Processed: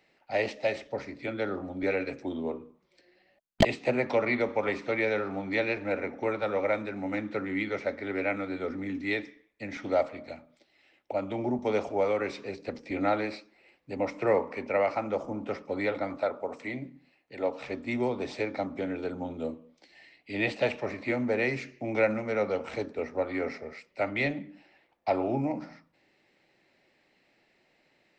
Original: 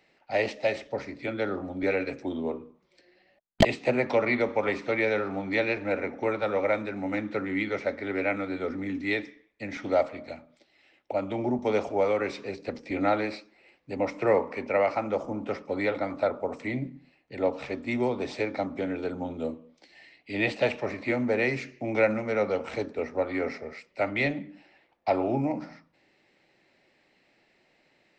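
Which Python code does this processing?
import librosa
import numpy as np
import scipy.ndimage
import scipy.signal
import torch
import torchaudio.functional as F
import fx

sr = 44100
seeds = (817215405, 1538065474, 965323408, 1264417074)

y = fx.low_shelf(x, sr, hz=220.0, db=-9.0, at=(16.17, 17.66))
y = F.gain(torch.from_numpy(y), -2.0).numpy()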